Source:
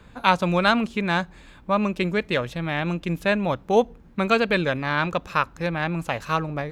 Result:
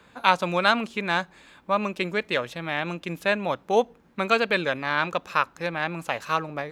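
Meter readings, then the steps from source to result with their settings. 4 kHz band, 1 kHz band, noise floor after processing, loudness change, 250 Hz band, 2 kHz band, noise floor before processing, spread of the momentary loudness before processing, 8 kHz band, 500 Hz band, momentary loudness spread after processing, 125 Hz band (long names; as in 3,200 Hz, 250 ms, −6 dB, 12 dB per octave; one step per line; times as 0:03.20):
0.0 dB, −0.5 dB, −58 dBFS, −2.0 dB, −6.5 dB, 0.0 dB, −50 dBFS, 7 LU, can't be measured, −2.0 dB, 8 LU, −8.5 dB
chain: high-pass filter 410 Hz 6 dB per octave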